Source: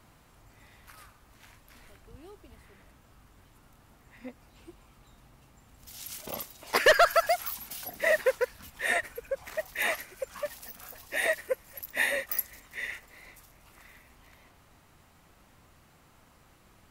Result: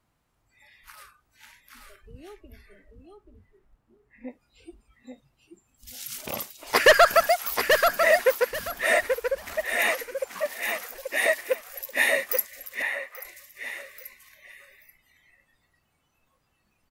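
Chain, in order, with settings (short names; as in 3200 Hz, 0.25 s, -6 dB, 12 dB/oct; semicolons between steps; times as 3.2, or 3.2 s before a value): rattling part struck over -39 dBFS, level -27 dBFS; 2.32–4.29 high shelf 3700 Hz -> 2100 Hz -10 dB; feedback echo 0.834 s, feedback 22%, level -5 dB; spectral noise reduction 19 dB; 12.82–13.25 three-band isolator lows -14 dB, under 550 Hz, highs -12 dB, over 2500 Hz; gain +4.5 dB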